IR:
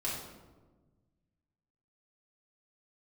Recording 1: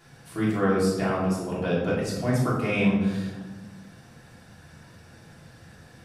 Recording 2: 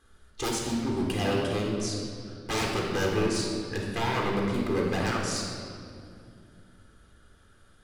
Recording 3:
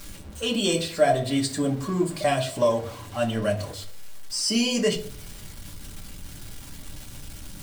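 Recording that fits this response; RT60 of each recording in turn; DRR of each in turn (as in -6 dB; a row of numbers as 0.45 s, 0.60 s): 1; 1.3 s, 2.4 s, 0.50 s; -7.5 dB, -2.0 dB, -0.5 dB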